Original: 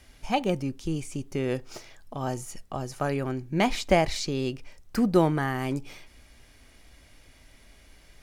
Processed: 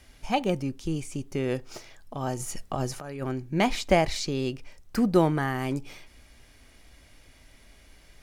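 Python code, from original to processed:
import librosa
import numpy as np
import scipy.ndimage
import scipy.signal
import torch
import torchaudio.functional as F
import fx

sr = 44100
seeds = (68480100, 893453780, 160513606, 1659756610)

y = fx.over_compress(x, sr, threshold_db=-32.0, ratio=-0.5, at=(2.39, 3.21), fade=0.02)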